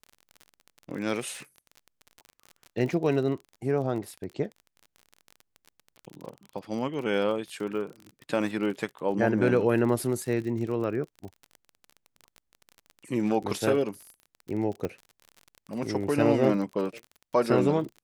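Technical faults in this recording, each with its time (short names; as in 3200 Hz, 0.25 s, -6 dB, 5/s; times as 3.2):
crackle 34/s -35 dBFS
14.85 pop -19 dBFS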